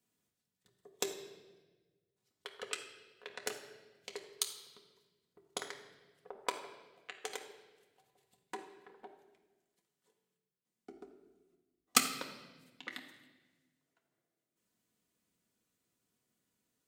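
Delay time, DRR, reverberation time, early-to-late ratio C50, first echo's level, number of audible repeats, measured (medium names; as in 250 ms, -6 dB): no echo, 1.0 dB, 1.3 s, 7.5 dB, no echo, no echo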